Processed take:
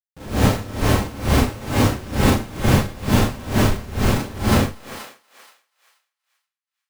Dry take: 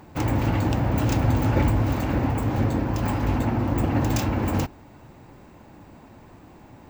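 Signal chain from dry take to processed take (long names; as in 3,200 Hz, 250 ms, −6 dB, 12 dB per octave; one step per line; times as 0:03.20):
hum removal 318.6 Hz, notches 4
0:03.59–0:04.13: elliptic band-stop filter 210–1,600 Hz, stop band 40 dB
comparator with hysteresis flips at −23.5 dBFS
feedback echo with a high-pass in the loop 239 ms, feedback 50%, high-pass 620 Hz, level −6.5 dB
four-comb reverb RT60 0.36 s, combs from 29 ms, DRR −9 dB
tremolo with a sine in dB 2.2 Hz, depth 21 dB
level +3 dB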